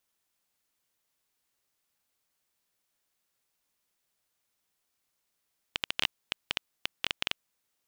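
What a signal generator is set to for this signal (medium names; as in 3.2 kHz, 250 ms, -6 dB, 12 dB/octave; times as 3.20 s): random clicks 11 per s -9.5 dBFS 1.64 s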